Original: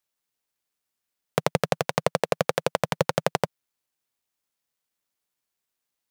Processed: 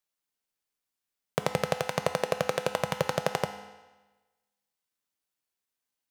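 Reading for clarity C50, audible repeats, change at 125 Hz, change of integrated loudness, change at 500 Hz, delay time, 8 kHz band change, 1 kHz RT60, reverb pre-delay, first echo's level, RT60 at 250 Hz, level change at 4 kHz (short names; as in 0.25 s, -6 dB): 9.5 dB, none, -4.5 dB, -4.0 dB, -4.0 dB, none, -3.5 dB, 1.2 s, 4 ms, none, 1.2 s, -3.5 dB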